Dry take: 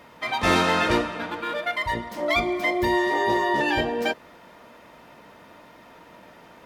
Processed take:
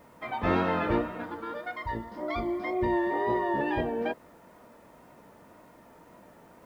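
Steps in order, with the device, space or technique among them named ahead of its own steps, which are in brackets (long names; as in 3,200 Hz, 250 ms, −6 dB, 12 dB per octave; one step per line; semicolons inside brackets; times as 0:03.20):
0:01.24–0:02.73: thirty-one-band graphic EQ 160 Hz −9 dB, 630 Hz −6 dB, 2,500 Hz −8 dB, 5,000 Hz +11 dB
cassette deck with a dirty head (head-to-tape spacing loss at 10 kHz 44 dB; tape wow and flutter; white noise bed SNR 38 dB)
level −2 dB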